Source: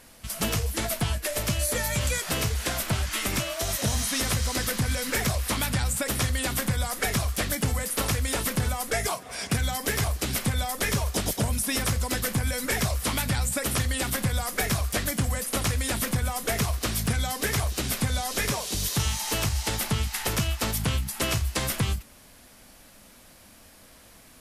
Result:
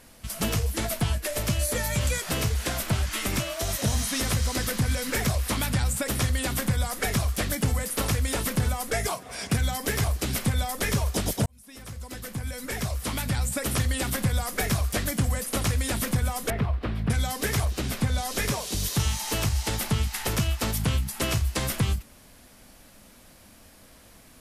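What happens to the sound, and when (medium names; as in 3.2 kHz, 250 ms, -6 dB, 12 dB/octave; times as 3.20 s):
11.46–13.77 s: fade in
16.50–17.10 s: distance through air 450 m
17.65–18.18 s: peaking EQ 13 kHz -6 dB 2 oct
whole clip: bass shelf 490 Hz +3.5 dB; trim -1.5 dB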